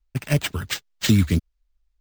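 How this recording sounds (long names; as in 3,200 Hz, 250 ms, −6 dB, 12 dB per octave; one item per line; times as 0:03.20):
phaser sweep stages 2, 3 Hz, lowest notch 650–1,700 Hz
aliases and images of a low sample rate 11,000 Hz, jitter 0%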